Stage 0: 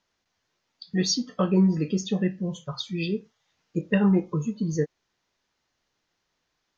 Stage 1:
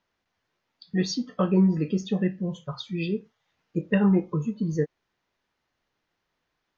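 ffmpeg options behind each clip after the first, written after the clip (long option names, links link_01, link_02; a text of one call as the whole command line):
ffmpeg -i in.wav -af "bass=frequency=250:gain=0,treble=frequency=4000:gain=-10" out.wav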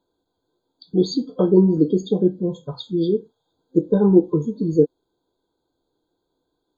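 ffmpeg -i in.wav -af "superequalizer=6b=3.16:7b=2.51:10b=0.282:11b=0.501,afftfilt=real='re*eq(mod(floor(b*sr/1024/1600),2),0)':imag='im*eq(mod(floor(b*sr/1024/1600),2),0)':win_size=1024:overlap=0.75,volume=3dB" out.wav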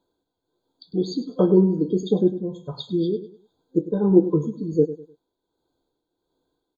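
ffmpeg -i in.wav -af "tremolo=f=1.4:d=0.54,aecho=1:1:101|202|303:0.2|0.0599|0.018" out.wav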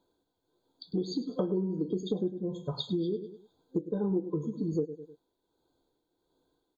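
ffmpeg -i in.wav -af "acompressor=threshold=-28dB:ratio=6" out.wav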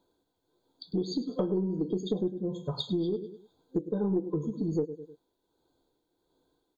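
ffmpeg -i in.wav -af "aeval=exprs='0.126*(cos(1*acos(clip(val(0)/0.126,-1,1)))-cos(1*PI/2))+0.00794*(cos(2*acos(clip(val(0)/0.126,-1,1)))-cos(2*PI/2))+0.00178*(cos(5*acos(clip(val(0)/0.126,-1,1)))-cos(5*PI/2))':channel_layout=same,volume=1dB" out.wav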